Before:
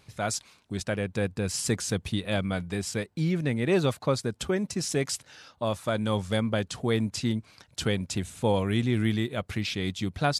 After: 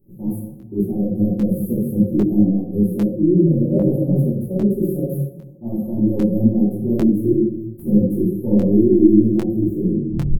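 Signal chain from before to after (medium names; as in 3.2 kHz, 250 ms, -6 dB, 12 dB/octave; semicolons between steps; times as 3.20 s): tape stop on the ending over 0.60 s; in parallel at -8.5 dB: saturation -23 dBFS, distortion -13 dB; on the sum: formant shift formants +5 st; inverse Chebyshev band-stop 1.7–5 kHz, stop band 80 dB; comb 5.6 ms, depth 65%; on a send: filtered feedback delay 223 ms, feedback 42%, level -22 dB; on the sum: simulated room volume 210 m³, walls mixed, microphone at 2.7 m; dynamic bell 260 Hz, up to +6 dB, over -30 dBFS, Q 3.2; crackling interface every 0.80 s, samples 256, repeat, from 0.59 s; detune thickener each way 43 cents; trim +1.5 dB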